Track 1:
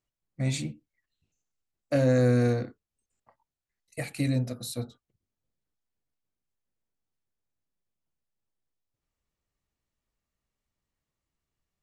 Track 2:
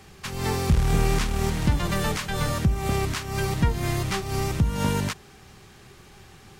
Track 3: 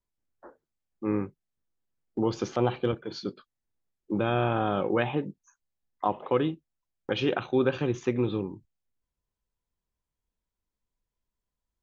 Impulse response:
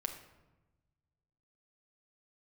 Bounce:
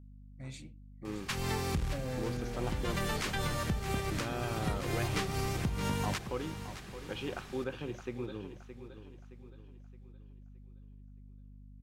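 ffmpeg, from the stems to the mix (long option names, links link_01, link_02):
-filter_complex "[0:a]volume=-17dB,asplit=3[link_01][link_02][link_03];[link_02]volume=-8.5dB[link_04];[1:a]acompressor=threshold=-29dB:ratio=4,adelay=1050,volume=-2.5dB,asplit=2[link_05][link_06];[link_06]volume=-11.5dB[link_07];[2:a]volume=-13dB,asplit=2[link_08][link_09];[link_09]volume=-11dB[link_10];[link_03]apad=whole_len=336938[link_11];[link_05][link_11]sidechaincompress=threshold=-47dB:ratio=8:attack=20:release=433[link_12];[link_04][link_07][link_10]amix=inputs=3:normalize=0,aecho=0:1:619|1238|1857|2476|3095|3714:1|0.41|0.168|0.0689|0.0283|0.0116[link_13];[link_01][link_12][link_08][link_13]amix=inputs=4:normalize=0,equalizer=frequency=2400:width=0.61:gain=2.5,aeval=exprs='val(0)+0.00282*(sin(2*PI*50*n/s)+sin(2*PI*2*50*n/s)/2+sin(2*PI*3*50*n/s)/3+sin(2*PI*4*50*n/s)/4+sin(2*PI*5*50*n/s)/5)':channel_layout=same"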